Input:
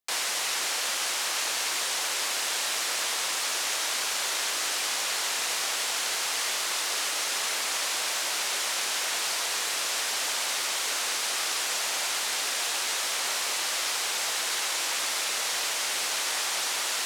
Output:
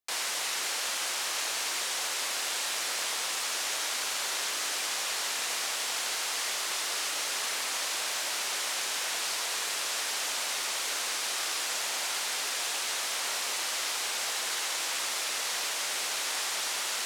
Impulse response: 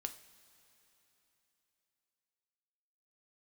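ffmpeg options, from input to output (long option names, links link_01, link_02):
-filter_complex "[0:a]asplit=2[link_01][link_02];[1:a]atrim=start_sample=2205,adelay=81[link_03];[link_02][link_03]afir=irnorm=-1:irlink=0,volume=-7.5dB[link_04];[link_01][link_04]amix=inputs=2:normalize=0,volume=-3.5dB"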